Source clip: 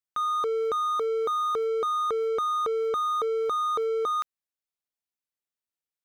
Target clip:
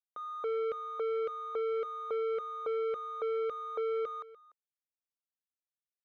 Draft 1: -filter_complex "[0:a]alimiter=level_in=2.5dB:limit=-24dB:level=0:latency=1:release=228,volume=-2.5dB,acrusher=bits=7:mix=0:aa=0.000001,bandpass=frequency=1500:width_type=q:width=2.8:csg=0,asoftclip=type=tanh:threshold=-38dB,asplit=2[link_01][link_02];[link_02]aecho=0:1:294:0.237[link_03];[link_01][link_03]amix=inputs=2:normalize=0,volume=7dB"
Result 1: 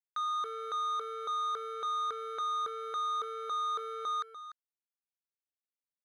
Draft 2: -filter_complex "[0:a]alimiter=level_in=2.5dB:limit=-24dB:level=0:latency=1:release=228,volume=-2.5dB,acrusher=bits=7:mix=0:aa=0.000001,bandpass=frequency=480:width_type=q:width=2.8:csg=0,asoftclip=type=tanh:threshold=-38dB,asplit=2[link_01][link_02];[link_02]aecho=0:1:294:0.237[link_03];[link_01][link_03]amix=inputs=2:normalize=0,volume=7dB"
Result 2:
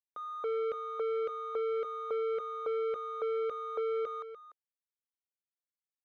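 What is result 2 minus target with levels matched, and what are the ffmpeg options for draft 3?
echo-to-direct +7 dB
-filter_complex "[0:a]alimiter=level_in=2.5dB:limit=-24dB:level=0:latency=1:release=228,volume=-2.5dB,acrusher=bits=7:mix=0:aa=0.000001,bandpass=frequency=480:width_type=q:width=2.8:csg=0,asoftclip=type=tanh:threshold=-38dB,asplit=2[link_01][link_02];[link_02]aecho=0:1:294:0.106[link_03];[link_01][link_03]amix=inputs=2:normalize=0,volume=7dB"

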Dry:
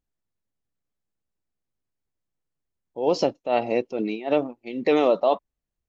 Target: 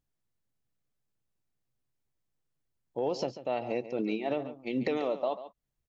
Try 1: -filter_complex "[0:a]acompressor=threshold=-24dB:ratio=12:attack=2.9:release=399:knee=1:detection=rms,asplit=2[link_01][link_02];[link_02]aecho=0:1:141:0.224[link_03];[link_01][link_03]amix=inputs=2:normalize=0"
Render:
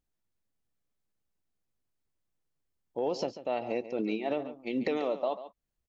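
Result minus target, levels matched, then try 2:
125 Hz band −4.0 dB
-filter_complex "[0:a]acompressor=threshold=-24dB:ratio=12:attack=2.9:release=399:knee=1:detection=rms,equalizer=frequency=130:width_type=o:width=0.26:gain=9,asplit=2[link_01][link_02];[link_02]aecho=0:1:141:0.224[link_03];[link_01][link_03]amix=inputs=2:normalize=0"

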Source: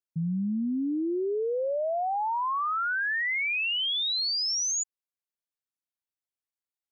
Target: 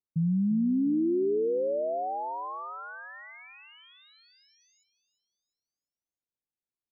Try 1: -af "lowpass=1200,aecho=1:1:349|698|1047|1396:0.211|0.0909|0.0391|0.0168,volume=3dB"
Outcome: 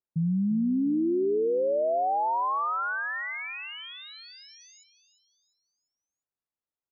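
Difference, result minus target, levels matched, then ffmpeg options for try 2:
1,000 Hz band +6.5 dB
-af "lowpass=540,aecho=1:1:349|698|1047|1396:0.211|0.0909|0.0391|0.0168,volume=3dB"

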